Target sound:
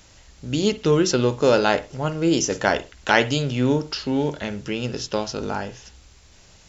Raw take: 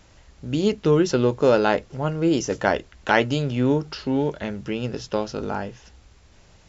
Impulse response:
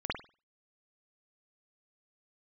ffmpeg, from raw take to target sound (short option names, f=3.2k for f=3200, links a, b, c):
-filter_complex "[0:a]highshelf=f=3.1k:g=10.5,asplit=2[a][b];[1:a]atrim=start_sample=2205,atrim=end_sample=6615[c];[b][c]afir=irnorm=-1:irlink=0,volume=-18.5dB[d];[a][d]amix=inputs=2:normalize=0,volume=-1dB"